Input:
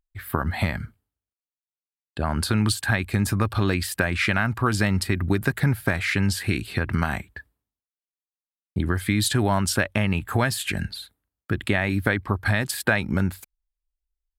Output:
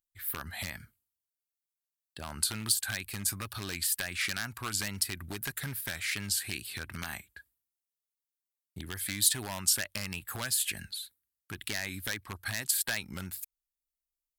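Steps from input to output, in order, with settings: wavefolder -13 dBFS; wow and flutter 67 cents; pre-emphasis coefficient 0.9; gain +1.5 dB

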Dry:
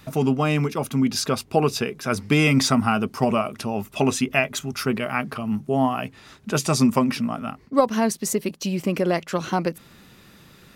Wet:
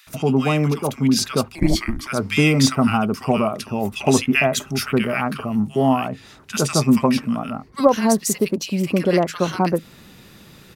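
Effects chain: bands offset in time highs, lows 70 ms, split 1400 Hz; 1.55–2.07 frequency shift -460 Hz; vocal rider 2 s; gain +3 dB

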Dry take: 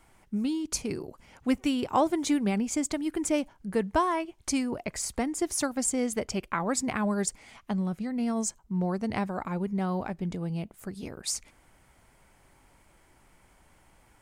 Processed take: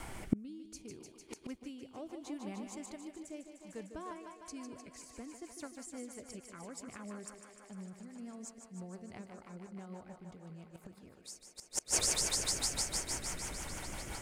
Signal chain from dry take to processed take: thinning echo 0.151 s, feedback 84%, high-pass 210 Hz, level -8 dB; rotary speaker horn 0.65 Hz, later 6 Hz, at 3.44; flipped gate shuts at -33 dBFS, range -35 dB; gain +18 dB

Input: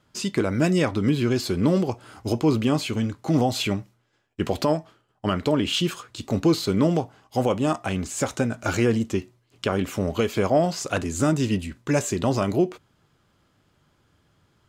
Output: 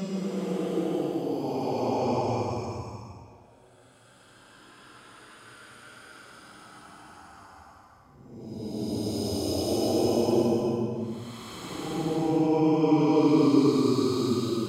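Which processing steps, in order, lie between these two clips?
harmonic-percussive split harmonic -11 dB; Paulstretch 19×, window 0.10 s, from 1.79

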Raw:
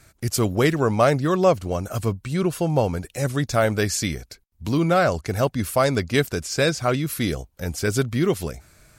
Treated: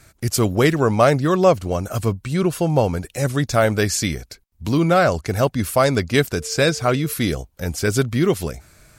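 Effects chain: 6.36–7.12 whine 450 Hz -40 dBFS; gain +3 dB

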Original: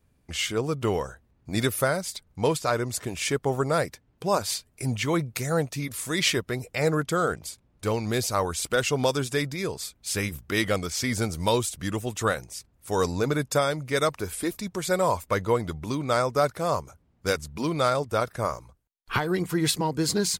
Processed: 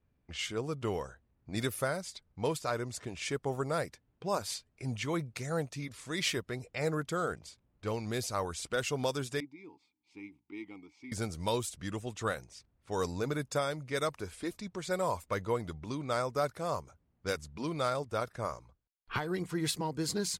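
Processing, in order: low-pass opened by the level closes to 3000 Hz, open at -21 dBFS; 9.4–11.12 vowel filter u; gain -8.5 dB

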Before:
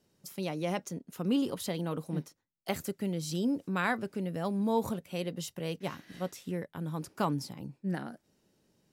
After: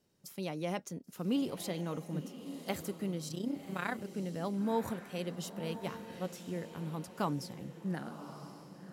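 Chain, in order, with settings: 3.28–4.16 AM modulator 31 Hz, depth 65%; diffused feedback echo 1.061 s, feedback 41%, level -11 dB; gain -3.5 dB

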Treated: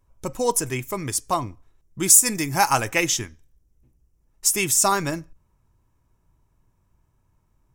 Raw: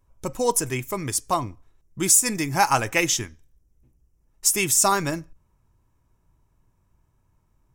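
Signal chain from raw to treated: 2.1–2.92 high shelf 7900 Hz +6.5 dB

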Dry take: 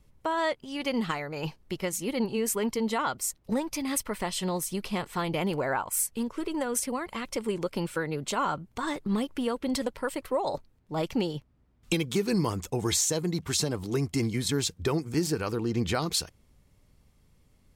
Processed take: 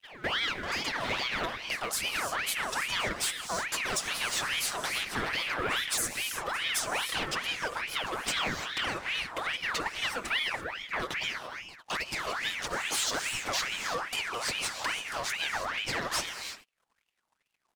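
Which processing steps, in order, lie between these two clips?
repeated pitch sweeps -8 st, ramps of 0.239 s; bell 780 Hz +3 dB 2.4 oct; compressor 16:1, threshold -33 dBFS, peak gain reduction 12.5 dB; comb 6.2 ms, depth 52%; sample leveller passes 3; low shelf 230 Hz -9.5 dB; pre-echo 0.215 s -18 dB; non-linear reverb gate 0.36 s rising, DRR 6 dB; gate -48 dBFS, range -15 dB; ring modulator with a swept carrier 1800 Hz, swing 55%, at 2.4 Hz

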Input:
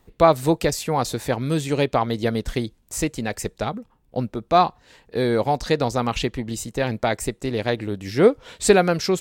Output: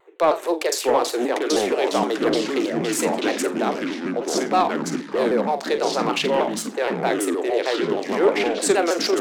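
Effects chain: Wiener smoothing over 9 samples; Chebyshev high-pass 340 Hz, order 6; in parallel at -1 dB: negative-ratio compressor -29 dBFS; on the sum: soft clip -6.5 dBFS, distortion -22 dB; flutter echo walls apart 7.3 m, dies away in 0.25 s; echoes that change speed 0.591 s, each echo -4 st, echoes 3; shaped vibrato saw down 6.4 Hz, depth 160 cents; gain -2 dB

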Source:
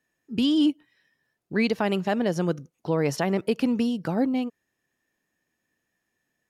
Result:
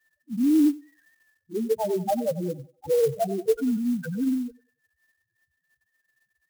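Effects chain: in parallel at -1 dB: limiter -23 dBFS, peak gain reduction 9.5 dB; on the sum: LPC vocoder at 8 kHz pitch kept; HPF 63 Hz; resonant high shelf 1900 Hz -7 dB, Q 3; loudest bins only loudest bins 2; bell 220 Hz -8.5 dB 2 oct; on a send: narrowing echo 93 ms, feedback 48%, band-pass 1100 Hz, level -13 dB; on the sum: clock jitter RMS 0.033 ms; gain +7 dB

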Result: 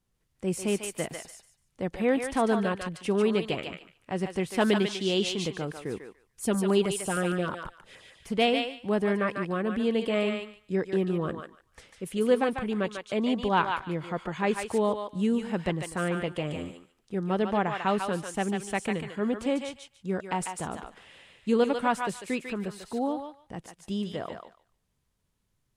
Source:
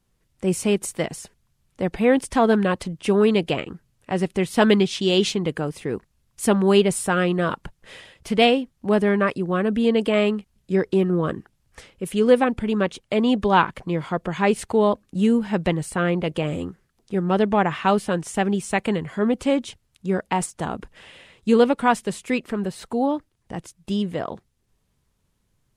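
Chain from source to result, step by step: 5.92–8.34 LFO notch saw down 6.4 Hz 530–5100 Hz; thinning echo 0.146 s, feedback 20%, high-pass 930 Hz, level -3 dB; gain -7.5 dB

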